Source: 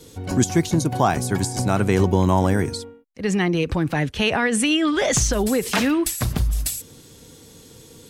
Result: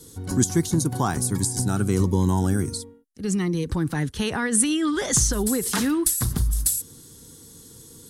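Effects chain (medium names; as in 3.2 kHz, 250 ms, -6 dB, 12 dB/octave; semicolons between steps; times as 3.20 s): fifteen-band graphic EQ 630 Hz -11 dB, 2.5 kHz -11 dB, 10 kHz +9 dB; 1.30–3.71 s: Shepard-style phaser falling 1.4 Hz; trim -1.5 dB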